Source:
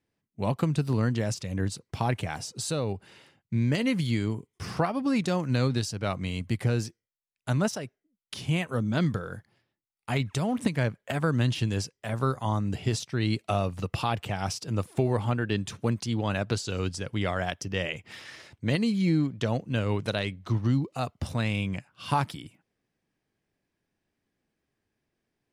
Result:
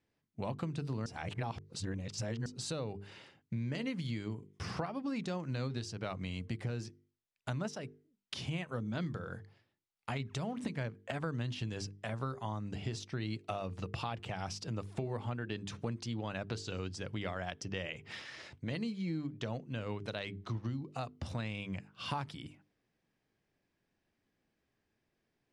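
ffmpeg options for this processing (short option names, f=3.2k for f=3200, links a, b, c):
-filter_complex "[0:a]asettb=1/sr,asplit=3[a][b][c];[a]atrim=end=18.124[d];[b]atrim=start=18.12:end=21.39,asetpts=PTS-STARTPTS,afade=t=in:d=0.004:c=qsin,afade=t=out:st=3.266:d=0.004:c=qsin,tremolo=f=2.8:d=0.34[e];[c]atrim=start=21.386[f];[d][e]acrossfade=d=0.004:c1=hsin:c2=qsin[g];[g][f]acrossfade=d=0.004:c1=qsin:c2=hsin,asplit=3[h][i][j];[h]atrim=end=1.062[k];[i]atrim=start=1.058:end=2.462,asetpts=PTS-STARTPTS,areverse[l];[j]atrim=start=2.458[m];[k][l]acrossfade=d=0.004:c1=hsin:c2=hsin[n];[n][m]acrossfade=d=0.004:c1=hsin:c2=hsin,lowpass=6.6k,bandreject=f=50:t=h:w=6,bandreject=f=100:t=h:w=6,bandreject=f=150:t=h:w=6,bandreject=f=200:t=h:w=6,bandreject=f=250:t=h:w=6,bandreject=f=300:t=h:w=6,bandreject=f=350:t=h:w=6,bandreject=f=400:t=h:w=6,bandreject=f=450:t=h:w=6,acompressor=threshold=-38dB:ratio=3"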